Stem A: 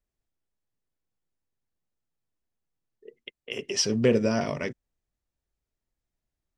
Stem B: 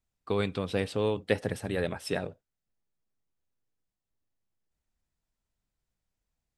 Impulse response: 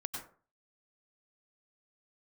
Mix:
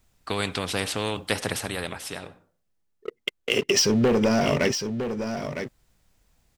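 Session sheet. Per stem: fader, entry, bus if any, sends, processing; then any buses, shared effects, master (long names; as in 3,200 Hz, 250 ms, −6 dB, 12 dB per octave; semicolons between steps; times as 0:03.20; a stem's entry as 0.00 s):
+3.0 dB, 0.00 s, no send, echo send −8.5 dB, leveller curve on the samples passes 3; downward compressor 10 to 1, threshold −21 dBFS, peak gain reduction 9.5 dB
+1.5 dB, 0.00 s, send −23.5 dB, no echo send, every bin compressed towards the loudest bin 2 to 1; automatic ducking −21 dB, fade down 1.50 s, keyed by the first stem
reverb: on, RT60 0.40 s, pre-delay 88 ms
echo: single-tap delay 958 ms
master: no processing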